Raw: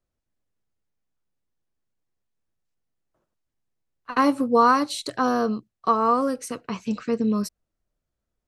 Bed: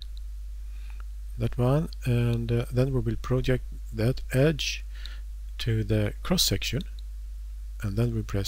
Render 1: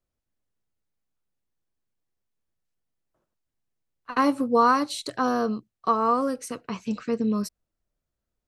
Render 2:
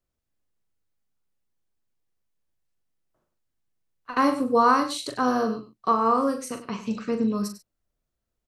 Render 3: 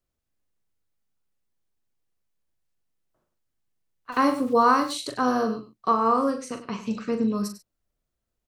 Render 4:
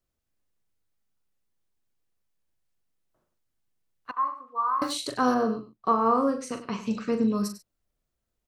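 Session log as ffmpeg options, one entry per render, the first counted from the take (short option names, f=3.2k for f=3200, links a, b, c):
-af "volume=-2dB"
-filter_complex "[0:a]asplit=2[a][b];[b]adelay=40,volume=-7.5dB[c];[a][c]amix=inputs=2:normalize=0,aecho=1:1:98:0.237"
-filter_complex "[0:a]asettb=1/sr,asplit=3[a][b][c];[a]atrim=end=4.124[d];[b]atrim=start=4.12:end=4.94,asetpts=PTS-STARTPTS,afade=t=in:d=0.004:c=qsin,afade=t=out:st=0.816:d=0.004:c=qsin,aeval=exprs='val(0)*gte(abs(val(0)),0.00708)':c=same[e];[c]atrim=start=4.936[f];[d][e]acrossfade=d=0.004:c1=hsin:c2=qsin[g];[g][f]acrossfade=d=0.004:c1=qsin:c2=hsin,asettb=1/sr,asplit=3[h][i][j];[h]atrim=end=6.304[k];[i]atrim=start=6.3:end=6.71,asetpts=PTS-STARTPTS,afade=t=in:d=0.004:c=qsin,afade=t=out:st=0.406:d=0.004:c=qsin,lowpass=7k[l];[j]atrim=start=6.706[m];[k][l]acrossfade=d=0.004:c1=hsin:c2=qsin[n];[n][m]acrossfade=d=0.004:c1=qsin:c2=hsin"
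-filter_complex "[0:a]asettb=1/sr,asplit=3[a][b][c];[a]atrim=end=4.114[d];[b]atrim=start=4.11:end=4.82,asetpts=PTS-STARTPTS,afade=t=in:d=0.004:c=qsin,afade=t=out:st=0.706:d=0.004:c=qsin,bandpass=f=1.1k:t=q:w=11[e];[c]atrim=start=4.816[f];[d][e]acrossfade=d=0.004:c1=hsin:c2=qsin[g];[g][f]acrossfade=d=0.004:c1=qsin:c2=hsin,asettb=1/sr,asplit=3[h][i][j];[h]atrim=end=5.344[k];[i]atrim=start=5.34:end=6.41,asetpts=PTS-STARTPTS,afade=t=in:d=0.004:c=qsin,afade=t=out:st=1.066:d=0.004:c=qsin,highshelf=f=2.4k:g=-9[l];[j]atrim=start=6.406[m];[k][l]acrossfade=d=0.004:c1=hsin:c2=qsin[n];[n][m]acrossfade=d=0.004:c1=qsin:c2=hsin"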